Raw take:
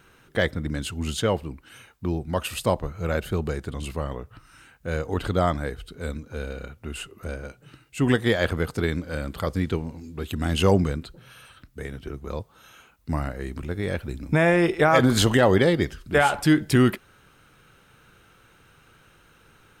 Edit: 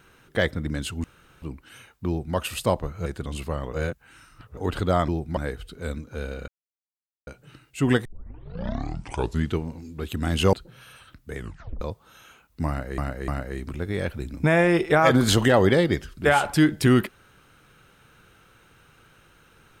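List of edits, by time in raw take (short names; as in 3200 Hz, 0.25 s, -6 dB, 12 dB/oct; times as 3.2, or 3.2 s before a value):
1.04–1.42 room tone
2.07–2.36 copy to 5.56
3.06–3.54 cut
4.21–5.05 reverse
6.67–7.46 mute
8.24 tape start 1.55 s
10.72–11.02 cut
11.86 tape stop 0.44 s
13.17–13.47 loop, 3 plays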